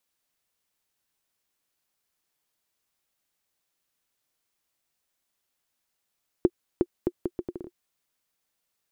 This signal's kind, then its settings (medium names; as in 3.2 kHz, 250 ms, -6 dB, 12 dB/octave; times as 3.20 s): bouncing ball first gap 0.36 s, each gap 0.72, 354 Hz, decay 50 ms -7.5 dBFS